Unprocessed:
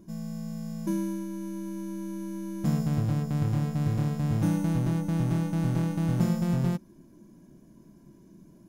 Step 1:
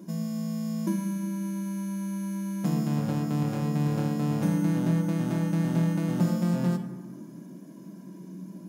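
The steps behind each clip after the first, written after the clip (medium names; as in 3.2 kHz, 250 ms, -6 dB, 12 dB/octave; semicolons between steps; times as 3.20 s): high-pass 170 Hz 24 dB/octave; compression 2:1, threshold -39 dBFS, peak gain reduction 9.5 dB; reverberation RT60 1.4 s, pre-delay 3 ms, DRR 4.5 dB; trim +7.5 dB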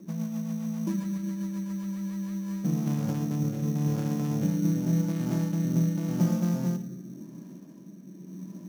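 rotary cabinet horn 7.5 Hz, later 0.9 Hz, at 1.93 s; bass shelf 390 Hz +4.5 dB; sample-rate reducer 6 kHz, jitter 0%; trim -3 dB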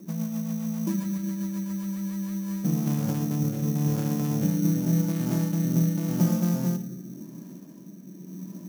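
treble shelf 8.4 kHz +10 dB; trim +2 dB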